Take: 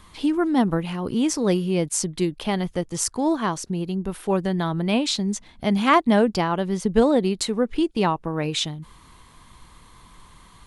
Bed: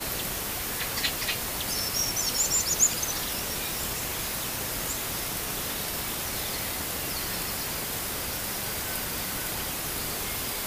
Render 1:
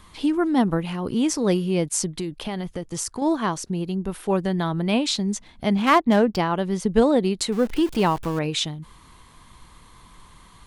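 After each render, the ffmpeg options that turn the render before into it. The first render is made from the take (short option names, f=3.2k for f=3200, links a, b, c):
-filter_complex "[0:a]asettb=1/sr,asplit=3[a][b][c];[a]atrim=end=2.184[d];[b]atrim=start=2.18:end=3.22,asetpts=PTS-STARTPTS,afade=t=in:d=0.004:c=qsin,afade=t=out:st=1.036:d=0.004:c=qsin,acompressor=threshold=-24dB:ratio=6:attack=3.2:release=140:knee=1:detection=peak[e];[c]atrim=start=3.216[f];[d][e]acrossfade=d=0.004:c1=hsin:c2=qsin[g];[g][f]acrossfade=d=0.004:c1=qsin:c2=hsin,asettb=1/sr,asplit=3[h][i][j];[h]atrim=end=5.754[k];[i]atrim=start=5.75:end=6.37,asetpts=PTS-STARTPTS,afade=t=in:d=0.004:c=qsin,afade=t=out:st=0.616:d=0.004:c=qsin,adynamicsmooth=sensitivity=3.5:basefreq=2.4k[l];[j]atrim=start=6.366[m];[k][l]acrossfade=d=0.004:c1=hsin:c2=qsin[n];[n][m]acrossfade=d=0.004:c1=qsin:c2=hsin,asettb=1/sr,asplit=3[o][p][q];[o]atrim=end=7.524[r];[p]atrim=start=7.52:end=8.39,asetpts=PTS-STARTPTS,afade=t=in:d=0.004:c=qsin,afade=t=out:st=0.866:d=0.004:c=qsin,aeval=exprs='val(0)+0.5*0.0282*sgn(val(0))':c=same[s];[q]atrim=start=8.386[t];[r][s]acrossfade=d=0.004:c1=hsin:c2=qsin[u];[u][t]acrossfade=d=0.004:c1=qsin:c2=hsin"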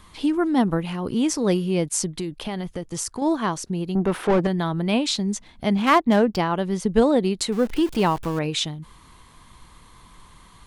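-filter_complex "[0:a]asettb=1/sr,asplit=3[a][b][c];[a]atrim=end=3.954[d];[b]atrim=start=3.95:end=4.47,asetpts=PTS-STARTPTS,afade=t=in:d=0.004:c=qsin,afade=t=out:st=0.516:d=0.004:c=qsin,asplit=2[e][f];[f]highpass=f=720:p=1,volume=26dB,asoftclip=type=tanh:threshold=-10.5dB[g];[e][g]amix=inputs=2:normalize=0,lowpass=f=1k:p=1,volume=-6dB[h];[c]atrim=start=4.466[i];[d][h]acrossfade=d=0.004:c1=hsin:c2=qsin[j];[j][i]acrossfade=d=0.004:c1=qsin:c2=hsin"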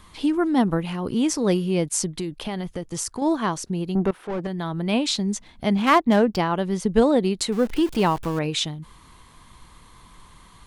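-filter_complex "[0:a]asplit=2[a][b];[a]atrim=end=4.11,asetpts=PTS-STARTPTS,afade=t=out:st=4.106:d=0.004:c=hsin:silence=0.112202[c];[b]atrim=start=4.11,asetpts=PTS-STARTPTS,afade=t=in:d=0.92:silence=0.112202[d];[c][d]concat=n=2:v=0:a=1"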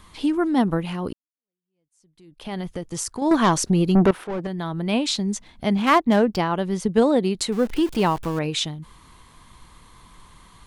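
-filter_complex "[0:a]asettb=1/sr,asplit=3[a][b][c];[a]atrim=end=3.314[d];[b]atrim=start=3.31:end=4.24,asetpts=PTS-STARTPTS,afade=t=in:d=0.004:c=qsin,afade=t=out:st=0.926:d=0.004:c=qsin,aeval=exprs='0.266*sin(PI/2*1.78*val(0)/0.266)':c=same[e];[c]atrim=start=4.236[f];[d][e]acrossfade=d=0.004:c1=hsin:c2=qsin[g];[g][f]acrossfade=d=0.004:c1=qsin:c2=hsin,asettb=1/sr,asplit=3[h][i][j];[h]atrim=end=6.884[k];[i]atrim=start=6.88:end=7.35,asetpts=PTS-STARTPTS,afade=t=in:d=0.004:c=qsin,afade=t=out:st=0.466:d=0.004:c=qsin,highpass=72[l];[j]atrim=start=7.346[m];[k][l]acrossfade=d=0.004:c1=hsin:c2=qsin[n];[n][m]acrossfade=d=0.004:c1=qsin:c2=hsin,asplit=2[o][p];[o]atrim=end=1.13,asetpts=PTS-STARTPTS,afade=t=out:st=1.126:d=0.004:c=hsin[q];[p]atrim=start=1.13,asetpts=PTS-STARTPTS,afade=t=in:d=1.4:c=exp[r];[q][r]concat=n=2:v=0:a=1"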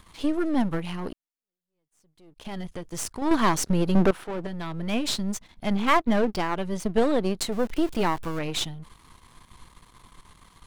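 -af "aeval=exprs='if(lt(val(0),0),0.251*val(0),val(0))':c=same"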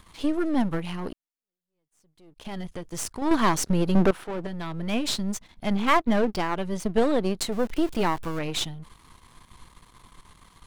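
-af anull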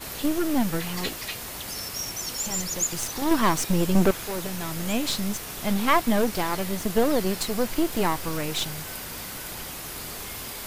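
-filter_complex "[1:a]volume=-4.5dB[a];[0:a][a]amix=inputs=2:normalize=0"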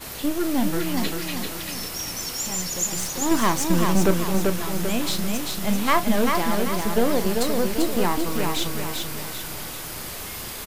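-filter_complex "[0:a]asplit=2[a][b];[b]adelay=34,volume=-12dB[c];[a][c]amix=inputs=2:normalize=0,aecho=1:1:391|782|1173|1564|1955|2346:0.631|0.278|0.122|0.0537|0.0236|0.0104"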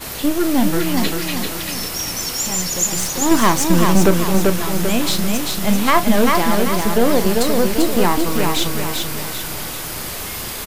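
-af "volume=6.5dB,alimiter=limit=-2dB:level=0:latency=1"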